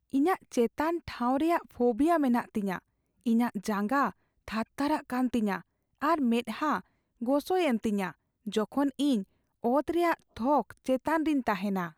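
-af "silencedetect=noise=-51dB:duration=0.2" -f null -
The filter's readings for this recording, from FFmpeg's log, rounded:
silence_start: 2.79
silence_end: 3.21 | silence_duration: 0.42
silence_start: 4.12
silence_end: 4.48 | silence_duration: 0.36
silence_start: 5.61
silence_end: 6.02 | silence_duration: 0.40
silence_start: 6.81
silence_end: 7.21 | silence_duration: 0.40
silence_start: 8.12
silence_end: 8.46 | silence_duration: 0.34
silence_start: 9.24
silence_end: 9.63 | silence_duration: 0.39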